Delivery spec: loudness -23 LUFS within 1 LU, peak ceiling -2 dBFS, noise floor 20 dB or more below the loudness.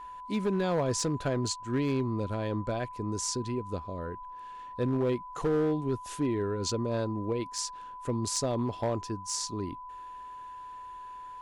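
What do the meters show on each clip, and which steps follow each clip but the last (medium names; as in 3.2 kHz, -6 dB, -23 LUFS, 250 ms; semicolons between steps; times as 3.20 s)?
clipped samples 1.2%; clipping level -22.5 dBFS; steady tone 1 kHz; tone level -41 dBFS; loudness -31.5 LUFS; peak level -22.5 dBFS; loudness target -23.0 LUFS
-> clip repair -22.5 dBFS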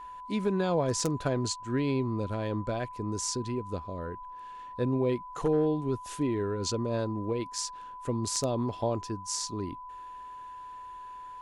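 clipped samples 0.0%; steady tone 1 kHz; tone level -41 dBFS
-> band-stop 1 kHz, Q 30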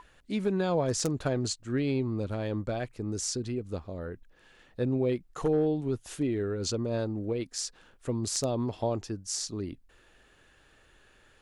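steady tone not found; loudness -31.5 LUFS; peak level -13.5 dBFS; loudness target -23.0 LUFS
-> trim +8.5 dB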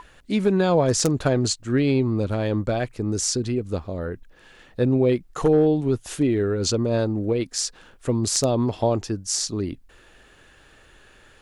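loudness -23.0 LUFS; peak level -5.0 dBFS; noise floor -53 dBFS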